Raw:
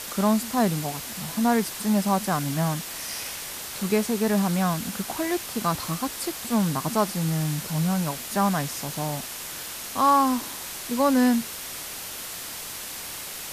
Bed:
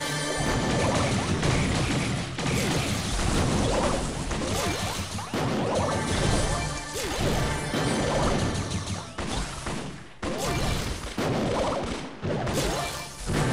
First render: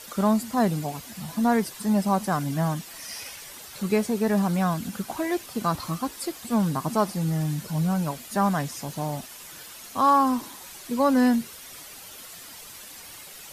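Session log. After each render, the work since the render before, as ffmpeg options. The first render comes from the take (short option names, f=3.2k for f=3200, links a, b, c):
-af "afftdn=nr=10:nf=-36"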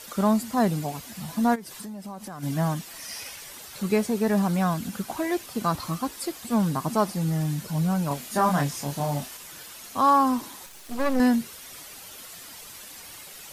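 -filter_complex "[0:a]asplit=3[a][b][c];[a]afade=t=out:st=1.54:d=0.02[d];[b]acompressor=threshold=-34dB:ratio=12:attack=3.2:release=140:knee=1:detection=peak,afade=t=in:st=1.54:d=0.02,afade=t=out:st=2.42:d=0.02[e];[c]afade=t=in:st=2.42:d=0.02[f];[d][e][f]amix=inputs=3:normalize=0,asettb=1/sr,asplit=3[g][h][i];[g]atrim=end=8.084[j];[h]atrim=start=8.08:end=9.37,asetpts=PTS-STARTPTS,afade=t=in:d=0.004:c=qsin,afade=t=out:st=1.286:d=0.004:c=qsin,asplit=2[k][l];[l]adelay=28,volume=-2dB[m];[k][m]amix=inputs=2:normalize=0,atrim=end_sample=56889[n];[i]atrim=start=9.366[o];[j][n]acrossfade=d=0.004:c1=hsin:c2=qsin[p];[p][o]acrossfade=d=0.004:c1=qsin:c2=hsin,asettb=1/sr,asplit=3[q][r][s];[q]atrim=end=10.664[t];[r]atrim=start=10.66:end=11.2,asetpts=PTS-STARTPTS,afade=t=in:d=0.004:c=qsin,afade=t=out:st=0.536:d=0.004:c=qsin,aeval=exprs='max(val(0),0)':c=same[u];[s]atrim=start=11.196[v];[t][u]acrossfade=d=0.004:c1=hsin:c2=qsin[w];[w][v]acrossfade=d=0.004:c1=qsin:c2=hsin"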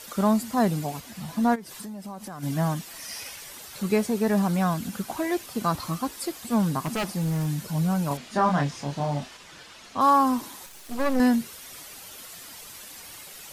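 -filter_complex "[0:a]asettb=1/sr,asplit=3[a][b][c];[a]atrim=end=1.004[d];[b]atrim=start=1:end=1.69,asetpts=PTS-STARTPTS,afade=t=in:d=0.004:c=qsin,afade=t=out:st=0.686:d=0.004:c=qsin,highshelf=f=5.7k:g=-5[e];[c]atrim=start=1.686[f];[d][e]acrossfade=d=0.004:c1=hsin:c2=qsin[g];[g][f]acrossfade=d=0.004:c1=qsin:c2=hsin,asettb=1/sr,asplit=3[h][i][j];[h]atrim=end=6.854[k];[i]atrim=start=6.85:end=7.47,asetpts=PTS-STARTPTS,afade=t=in:d=0.004:c=qsin,afade=t=out:st=0.616:d=0.004:c=qsin,aeval=exprs='0.0841*(abs(mod(val(0)/0.0841+3,4)-2)-1)':c=same[l];[j]atrim=start=7.466[m];[k][l]acrossfade=d=0.004:c1=hsin:c2=qsin[n];[n][m]acrossfade=d=0.004:c1=qsin:c2=hsin,asettb=1/sr,asplit=3[o][p][q];[o]atrim=end=8.174[r];[p]atrim=start=8.17:end=10.01,asetpts=PTS-STARTPTS,afade=t=in:d=0.004:c=qsin,afade=t=out:st=1.836:d=0.004:c=qsin,lowpass=4.9k[s];[q]atrim=start=10.006[t];[r][s]acrossfade=d=0.004:c1=hsin:c2=qsin[u];[u][t]acrossfade=d=0.004:c1=qsin:c2=hsin"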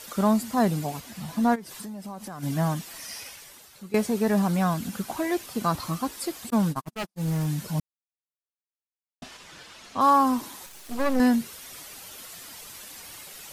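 -filter_complex "[0:a]asettb=1/sr,asplit=3[a][b][c];[a]atrim=end=6.504[d];[b]atrim=start=6.5:end=7.28,asetpts=PTS-STARTPTS,afade=t=in:d=0.004:c=qsin,afade=t=out:st=0.776:d=0.004:c=qsin,agate=range=-52dB:threshold=-27dB:ratio=16:release=100:detection=peak[e];[c]atrim=start=7.276[f];[d][e]acrossfade=d=0.004:c1=hsin:c2=qsin[g];[g][f]acrossfade=d=0.004:c1=qsin:c2=hsin,asplit=4[h][i][j][k];[h]atrim=end=3.94,asetpts=PTS-STARTPTS,afade=t=out:st=2.95:d=0.99:silence=0.133352[l];[i]atrim=start=3.94:end=7.8,asetpts=PTS-STARTPTS,afade=t=in:d=0.004:c=hsin:silence=0.133352,afade=t=out:st=3.856:d=0.004:c=hsin[m];[j]atrim=start=7.8:end=9.22,asetpts=PTS-STARTPTS,volume=0[n];[k]atrim=start=9.22,asetpts=PTS-STARTPTS,afade=t=in:d=0.004:c=hsin[o];[l][m][n][o]concat=n=4:v=0:a=1"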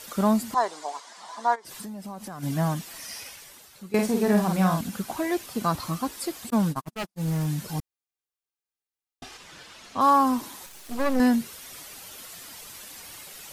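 -filter_complex "[0:a]asettb=1/sr,asplit=3[a][b][c];[a]atrim=end=0.544[d];[b]atrim=start=0.54:end=1.65,asetpts=PTS-STARTPTS,afade=t=in:d=0.004:c=qsin,afade=t=out:st=1.106:d=0.004:c=qsin,highpass=f=460:w=0.5412,highpass=f=460:w=1.3066,equalizer=f=520:t=q:w=4:g=-5,equalizer=f=1k:t=q:w=4:g=8,equalizer=f=2.6k:t=q:w=4:g=-9,lowpass=f=8k:w=0.5412,lowpass=f=8k:w=1.3066[e];[c]atrim=start=1.646[f];[d][e]acrossfade=d=0.004:c1=hsin:c2=qsin[g];[g][f]acrossfade=d=0.004:c1=qsin:c2=hsin,asettb=1/sr,asplit=3[h][i][j];[h]atrim=end=3.904[k];[i]atrim=start=3.9:end=4.81,asetpts=PTS-STARTPTS,afade=t=in:d=0.004:c=qsin,afade=t=out:st=0.906:d=0.004:c=qsin,asplit=2[l][m];[m]adelay=48,volume=-4dB[n];[l][n]amix=inputs=2:normalize=0,atrim=end_sample=40131[o];[j]atrim=start=4.806[p];[k][o]acrossfade=d=0.004:c1=hsin:c2=qsin[q];[q][p]acrossfade=d=0.004:c1=qsin:c2=hsin,asettb=1/sr,asplit=3[r][s][t];[r]atrim=end=7.694[u];[s]atrim=start=7.69:end=9.38,asetpts=PTS-STARTPTS,afade=t=in:d=0.004:c=qsin,afade=t=out:st=1.686:d=0.004:c=qsin,aecho=1:1:2.5:0.65,atrim=end_sample=74529[v];[t]atrim=start=9.376[w];[u][v]acrossfade=d=0.004:c1=hsin:c2=qsin[x];[x][w]acrossfade=d=0.004:c1=qsin:c2=hsin"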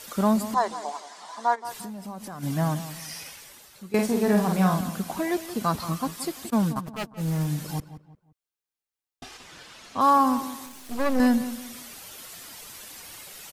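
-filter_complex "[0:a]asplit=2[a][b];[b]adelay=175,lowpass=f=1.9k:p=1,volume=-12.5dB,asplit=2[c][d];[d]adelay=175,lowpass=f=1.9k:p=1,volume=0.34,asplit=2[e][f];[f]adelay=175,lowpass=f=1.9k:p=1,volume=0.34[g];[a][c][e][g]amix=inputs=4:normalize=0"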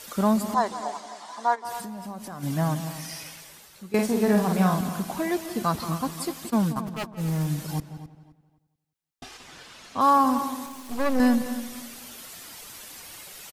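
-filter_complex "[0:a]asplit=2[a][b];[b]adelay=261,lowpass=f=3.2k:p=1,volume=-13dB,asplit=2[c][d];[d]adelay=261,lowpass=f=3.2k:p=1,volume=0.3,asplit=2[e][f];[f]adelay=261,lowpass=f=3.2k:p=1,volume=0.3[g];[a][c][e][g]amix=inputs=4:normalize=0"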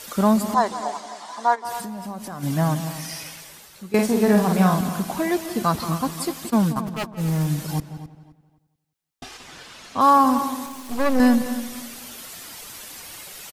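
-af "volume=4dB"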